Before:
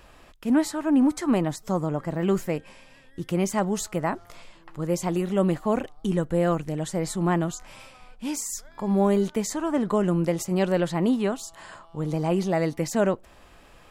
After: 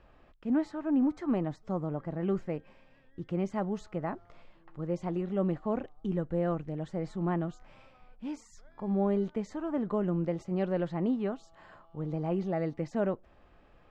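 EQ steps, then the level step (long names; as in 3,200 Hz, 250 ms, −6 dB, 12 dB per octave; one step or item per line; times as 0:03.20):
high-frequency loss of the air 150 metres
high-shelf EQ 2,000 Hz −8.5 dB
notch filter 980 Hz, Q 16
−6.5 dB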